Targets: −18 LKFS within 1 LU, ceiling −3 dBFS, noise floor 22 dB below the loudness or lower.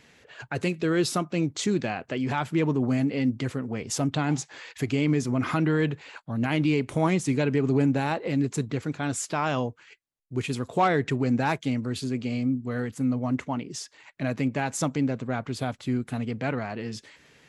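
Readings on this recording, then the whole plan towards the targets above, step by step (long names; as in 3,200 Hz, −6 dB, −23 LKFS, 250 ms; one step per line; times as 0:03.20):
integrated loudness −27.5 LKFS; sample peak −11.5 dBFS; target loudness −18.0 LKFS
→ level +9.5 dB
brickwall limiter −3 dBFS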